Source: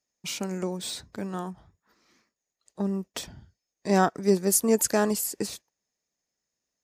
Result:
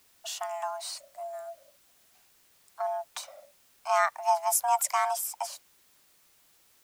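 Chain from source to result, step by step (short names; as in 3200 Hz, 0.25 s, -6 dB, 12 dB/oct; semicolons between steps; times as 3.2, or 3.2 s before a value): spectral gain 0.98–2.14, 220–6000 Hz -16 dB; frequency shift +490 Hz; added noise white -60 dBFS; gain -3.5 dB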